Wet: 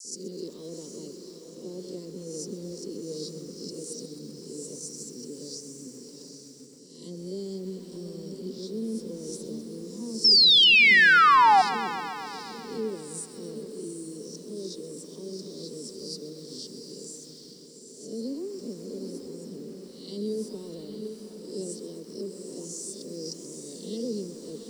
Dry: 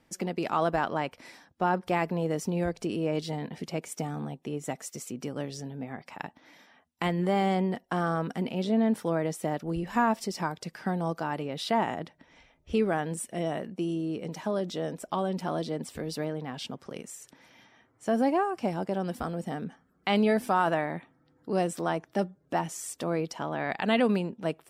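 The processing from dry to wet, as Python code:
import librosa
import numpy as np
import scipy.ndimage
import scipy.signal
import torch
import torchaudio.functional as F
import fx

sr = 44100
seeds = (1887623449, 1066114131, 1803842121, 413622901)

p1 = fx.spec_swells(x, sr, rise_s=0.61)
p2 = scipy.signal.sosfilt(scipy.signal.ellip(3, 1.0, 40, [420.0, 4900.0], 'bandstop', fs=sr, output='sos'), p1)
p3 = fx.cabinet(p2, sr, low_hz=310.0, low_slope=12, high_hz=9400.0, hz=(330.0, 660.0, 950.0, 2700.0, 4300.0), db=(-6, -10, 10, 9, 5))
p4 = fx.dispersion(p3, sr, late='lows', ms=48.0, hz=1600.0)
p5 = p4 + fx.echo_diffused(p4, sr, ms=804, feedback_pct=43, wet_db=-6.0, dry=0)
p6 = fx.spec_paint(p5, sr, seeds[0], shape='fall', start_s=10.24, length_s=1.38, low_hz=730.0, high_hz=5500.0, level_db=-17.0)
y = fx.echo_crushed(p6, sr, ms=129, feedback_pct=80, bits=8, wet_db=-15.0)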